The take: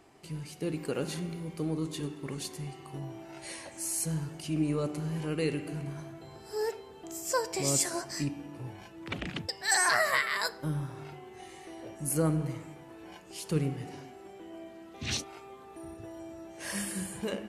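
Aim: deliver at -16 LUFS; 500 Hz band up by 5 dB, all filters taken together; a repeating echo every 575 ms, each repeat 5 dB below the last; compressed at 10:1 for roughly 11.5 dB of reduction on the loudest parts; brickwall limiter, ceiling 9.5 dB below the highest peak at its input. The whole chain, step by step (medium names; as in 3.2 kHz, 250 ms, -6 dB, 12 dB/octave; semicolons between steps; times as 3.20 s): peaking EQ 500 Hz +6 dB; compression 10:1, threshold -32 dBFS; peak limiter -30.5 dBFS; feedback delay 575 ms, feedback 56%, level -5 dB; trim +23.5 dB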